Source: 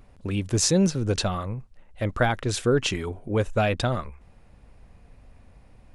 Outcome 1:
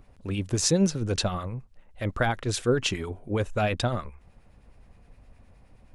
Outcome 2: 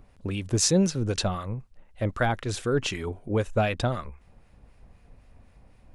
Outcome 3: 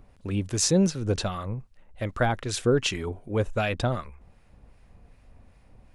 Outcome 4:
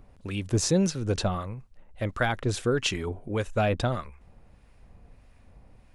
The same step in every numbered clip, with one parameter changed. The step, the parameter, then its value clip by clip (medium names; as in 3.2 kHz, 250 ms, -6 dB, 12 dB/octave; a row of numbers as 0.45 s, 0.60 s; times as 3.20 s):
harmonic tremolo, rate: 9.6 Hz, 3.9 Hz, 2.6 Hz, 1.6 Hz